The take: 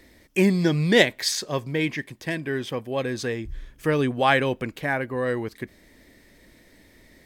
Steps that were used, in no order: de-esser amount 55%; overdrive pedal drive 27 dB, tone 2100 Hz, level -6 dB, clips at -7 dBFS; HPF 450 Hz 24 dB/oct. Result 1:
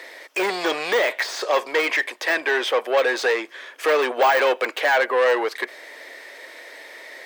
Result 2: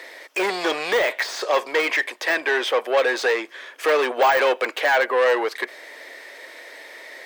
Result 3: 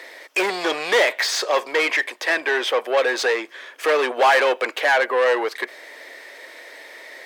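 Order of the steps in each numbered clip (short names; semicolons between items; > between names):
overdrive pedal > de-esser > HPF; overdrive pedal > HPF > de-esser; de-esser > overdrive pedal > HPF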